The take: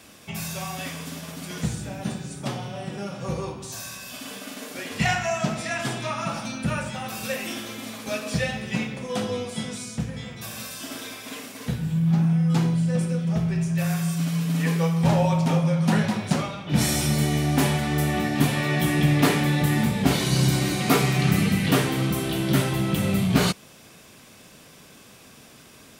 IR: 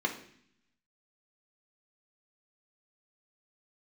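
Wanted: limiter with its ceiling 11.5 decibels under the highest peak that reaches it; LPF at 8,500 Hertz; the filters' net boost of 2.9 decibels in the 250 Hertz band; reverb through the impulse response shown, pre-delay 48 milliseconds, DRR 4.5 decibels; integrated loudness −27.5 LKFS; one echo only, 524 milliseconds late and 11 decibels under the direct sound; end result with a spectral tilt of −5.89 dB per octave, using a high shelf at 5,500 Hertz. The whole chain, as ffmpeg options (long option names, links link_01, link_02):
-filter_complex "[0:a]lowpass=8500,equalizer=frequency=250:width_type=o:gain=4.5,highshelf=frequency=5500:gain=3.5,alimiter=limit=-15dB:level=0:latency=1,aecho=1:1:524:0.282,asplit=2[link_01][link_02];[1:a]atrim=start_sample=2205,adelay=48[link_03];[link_02][link_03]afir=irnorm=-1:irlink=0,volume=-12dB[link_04];[link_01][link_04]amix=inputs=2:normalize=0,volume=-4dB"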